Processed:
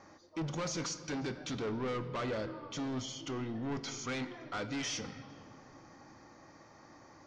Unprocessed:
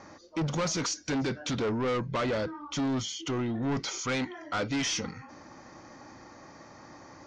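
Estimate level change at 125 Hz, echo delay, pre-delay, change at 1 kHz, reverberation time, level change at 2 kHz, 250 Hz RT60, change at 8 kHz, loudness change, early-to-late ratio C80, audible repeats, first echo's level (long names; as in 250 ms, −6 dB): −7.0 dB, no echo audible, 3 ms, −7.0 dB, 2.7 s, −7.0 dB, 3.5 s, −7.5 dB, −7.0 dB, 12.5 dB, no echo audible, no echo audible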